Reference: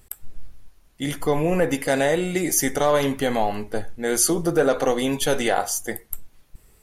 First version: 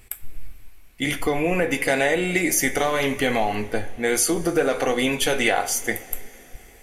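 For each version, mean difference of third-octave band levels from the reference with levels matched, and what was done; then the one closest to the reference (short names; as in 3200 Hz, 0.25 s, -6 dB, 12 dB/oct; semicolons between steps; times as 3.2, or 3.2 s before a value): 3.5 dB: compressor 2.5:1, threshold -22 dBFS, peak gain reduction 6 dB; bell 2300 Hz +10.5 dB 0.63 oct; two-slope reverb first 0.23 s, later 4.2 s, from -21 dB, DRR 8.5 dB; gain +2 dB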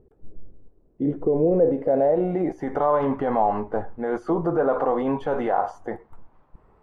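11.0 dB: low shelf 97 Hz -8 dB; limiter -18 dBFS, peak gain reduction 10.5 dB; low-pass sweep 420 Hz -> 1000 Hz, 1.31–2.78; gain +2.5 dB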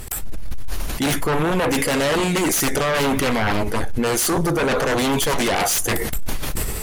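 8.0 dB: reverse; compressor 16:1, threshold -30 dBFS, peak gain reduction 17 dB; reverse; sine folder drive 17 dB, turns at -16 dBFS; sustainer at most 29 dB/s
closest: first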